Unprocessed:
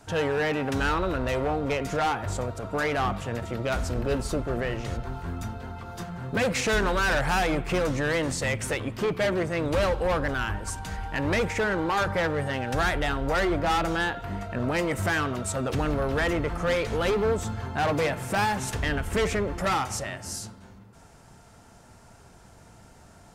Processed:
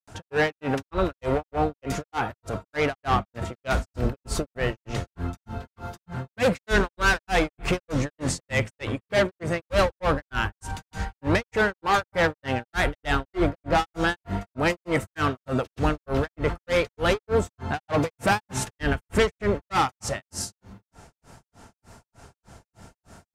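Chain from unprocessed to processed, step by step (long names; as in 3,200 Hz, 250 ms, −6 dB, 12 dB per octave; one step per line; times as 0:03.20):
granular cloud 225 ms, grains 3.3 per second, pitch spread up and down by 0 semitones
level +6 dB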